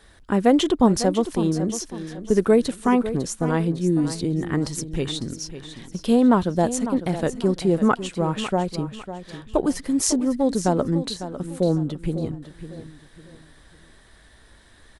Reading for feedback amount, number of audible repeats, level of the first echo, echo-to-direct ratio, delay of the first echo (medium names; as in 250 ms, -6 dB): 33%, 3, -12.0 dB, -11.5 dB, 551 ms